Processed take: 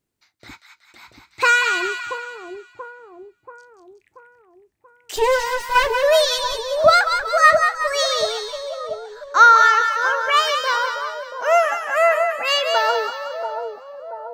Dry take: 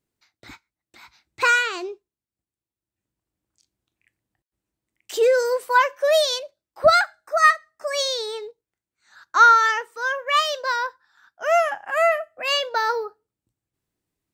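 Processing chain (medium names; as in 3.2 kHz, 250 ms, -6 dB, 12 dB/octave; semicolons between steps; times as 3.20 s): 5.16–5.91 s: comb filter that takes the minimum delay 7.2 ms; two-band feedback delay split 990 Hz, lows 683 ms, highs 185 ms, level -6 dB; trim +2.5 dB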